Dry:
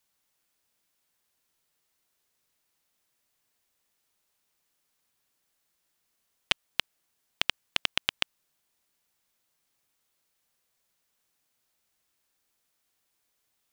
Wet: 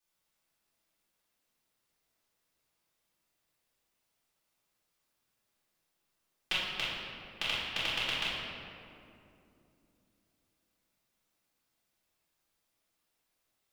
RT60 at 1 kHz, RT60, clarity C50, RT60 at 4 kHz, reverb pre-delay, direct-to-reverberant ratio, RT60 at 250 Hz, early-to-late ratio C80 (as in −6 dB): 2.4 s, 2.8 s, −2.0 dB, 1.4 s, 3 ms, −12.5 dB, 4.1 s, 0.0 dB